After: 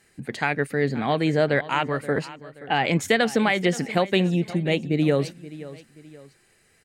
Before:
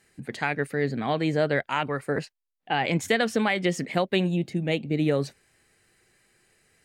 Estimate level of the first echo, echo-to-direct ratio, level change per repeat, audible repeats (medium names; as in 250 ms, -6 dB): -17.0 dB, -16.5 dB, -8.0 dB, 2